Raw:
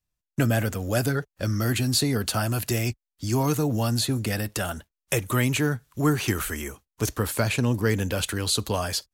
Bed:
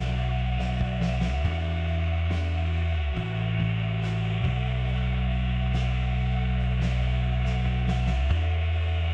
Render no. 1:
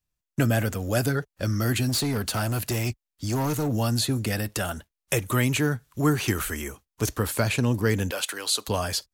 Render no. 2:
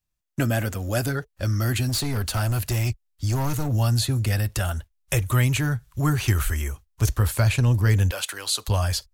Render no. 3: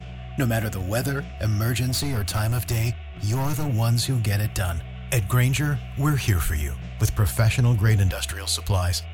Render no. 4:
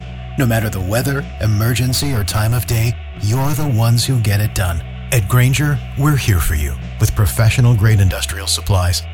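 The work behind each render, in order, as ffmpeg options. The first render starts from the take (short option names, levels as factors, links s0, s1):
-filter_complex "[0:a]asettb=1/sr,asplit=3[s0][s1][s2];[s0]atrim=end=1.894[s3];[s1]atrim=start=1.89:end=3.69,asetpts=PTS-STARTPTS,afade=t=in:d=0.004:c=qsin,afade=t=out:st=1.796:d=0.004:c=qsin,volume=12.6,asoftclip=hard,volume=0.0794[s4];[s2]atrim=start=3.686[s5];[s3][s4]acrossfade=d=0.004:c1=hsin:c2=qsin[s6];[s6][s5]acrossfade=d=0.004:c1=qsin:c2=hsin,asettb=1/sr,asplit=3[s7][s8][s9];[s7]atrim=end=8.114[s10];[s8]atrim=start=8.11:end=8.68,asetpts=PTS-STARTPTS,afade=t=in:d=0.004:c=qsin,afade=t=out:st=0.566:d=0.004:c=qsin,highpass=540[s11];[s9]atrim=start=8.676[s12];[s10][s11]acrossfade=d=0.004:c1=hsin:c2=qsin[s13];[s13][s12]acrossfade=d=0.004:c1=qsin:c2=hsin"
-af "bandreject=f=450:w=12,asubboost=boost=9:cutoff=80"
-filter_complex "[1:a]volume=0.316[s0];[0:a][s0]amix=inputs=2:normalize=0"
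-af "volume=2.51,alimiter=limit=0.794:level=0:latency=1"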